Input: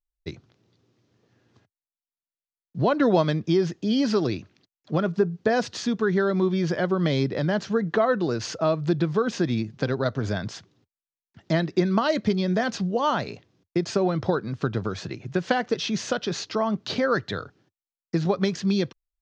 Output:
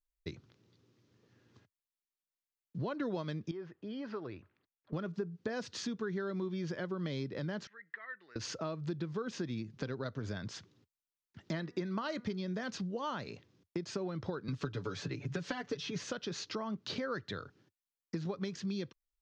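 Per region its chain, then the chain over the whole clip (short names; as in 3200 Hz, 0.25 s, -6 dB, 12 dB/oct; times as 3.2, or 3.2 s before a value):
3.51–4.93 LPF 1400 Hz + bell 190 Hz -14.5 dB 2.8 oct
7.67–8.36 band-pass 1900 Hz, Q 11 + mismatched tape noise reduction encoder only
11.51–12.37 bell 1200 Hz +3 dB 2.2 oct + de-hum 242.6 Hz, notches 8
14.48–16.04 comb 7 ms, depth 80% + three-band squash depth 70%
whole clip: bell 710 Hz -6.5 dB 0.46 oct; compressor 2.5:1, threshold -37 dBFS; gain -3 dB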